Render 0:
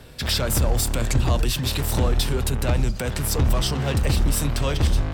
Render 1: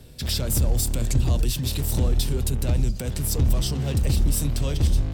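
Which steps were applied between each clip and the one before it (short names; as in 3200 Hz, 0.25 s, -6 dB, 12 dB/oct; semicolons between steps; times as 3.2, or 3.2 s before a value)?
bell 1300 Hz -12 dB 2.6 oct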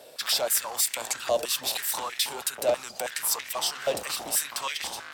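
stepped high-pass 6.2 Hz 610–2000 Hz; gain +2.5 dB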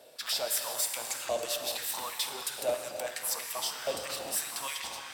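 non-linear reverb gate 0.42 s flat, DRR 4.5 dB; gain -6.5 dB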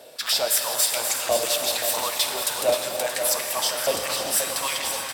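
echo 0.626 s -13 dB; lo-fi delay 0.528 s, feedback 55%, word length 9-bit, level -8 dB; gain +9 dB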